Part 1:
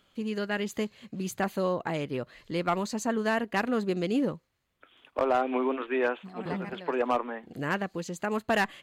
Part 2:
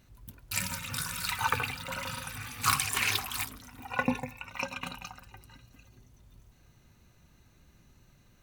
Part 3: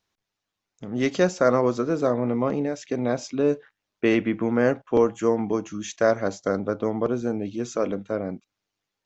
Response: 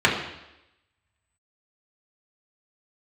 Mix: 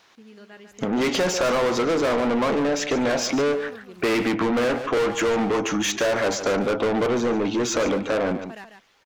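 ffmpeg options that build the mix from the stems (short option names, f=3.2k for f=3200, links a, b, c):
-filter_complex "[0:a]volume=-15dB,asplit=2[a][b];[b]volume=-8dB[c];[1:a]lowpass=f=2k:p=1,adelay=600,volume=-17.5dB[d];[2:a]highshelf=f=4.1k:g=-7,asplit=2[e][f];[f]highpass=f=720:p=1,volume=34dB,asoftclip=type=tanh:threshold=-6.5dB[g];[e][g]amix=inputs=2:normalize=0,lowpass=f=5.8k:p=1,volume=-6dB,volume=-1.5dB,asplit=2[h][i];[i]volume=-13dB[j];[c][j]amix=inputs=2:normalize=0,aecho=0:1:145:1[k];[a][d][h][k]amix=inputs=4:normalize=0,acompressor=threshold=-25dB:ratio=2"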